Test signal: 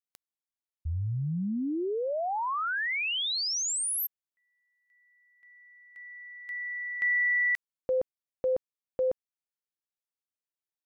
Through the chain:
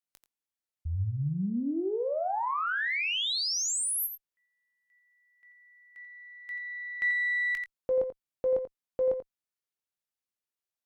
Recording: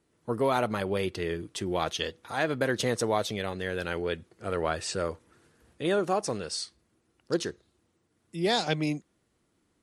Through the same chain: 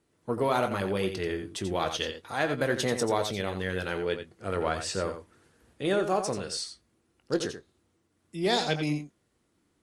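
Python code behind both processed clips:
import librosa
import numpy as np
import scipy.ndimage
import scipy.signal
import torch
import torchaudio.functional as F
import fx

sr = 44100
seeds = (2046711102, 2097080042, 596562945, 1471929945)

y = fx.cheby_harmonics(x, sr, harmonics=(3, 5, 7, 8), levels_db=(-28, -33, -40, -40), full_scale_db=-12.0)
y = fx.doubler(y, sr, ms=21.0, db=-11.0)
y = y + 10.0 ** (-9.0 / 20.0) * np.pad(y, (int(87 * sr / 1000.0), 0))[:len(y)]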